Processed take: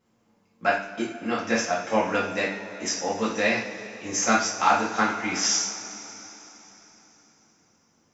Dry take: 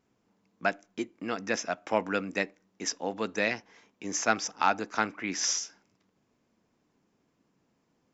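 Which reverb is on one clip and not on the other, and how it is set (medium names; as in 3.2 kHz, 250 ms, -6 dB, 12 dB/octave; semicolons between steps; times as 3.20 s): two-slope reverb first 0.49 s, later 4 s, from -18 dB, DRR -7.5 dB; trim -2 dB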